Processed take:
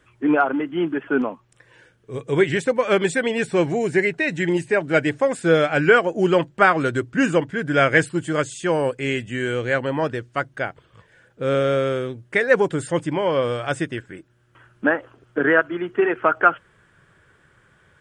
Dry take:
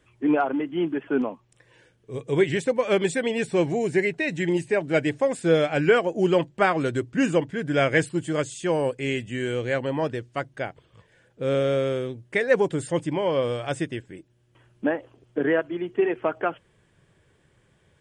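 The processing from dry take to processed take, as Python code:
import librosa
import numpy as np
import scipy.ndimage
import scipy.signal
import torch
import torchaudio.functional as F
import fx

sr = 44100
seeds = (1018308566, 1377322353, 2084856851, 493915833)

y = fx.peak_eq(x, sr, hz=1400.0, db=fx.steps((0.0, 7.0), (13.98, 14.0)), octaves=0.73)
y = F.gain(torch.from_numpy(y), 2.5).numpy()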